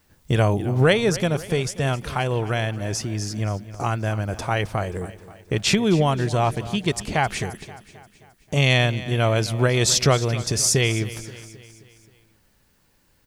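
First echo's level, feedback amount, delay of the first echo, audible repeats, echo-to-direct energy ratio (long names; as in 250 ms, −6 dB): −16.0 dB, 52%, 265 ms, 4, −14.5 dB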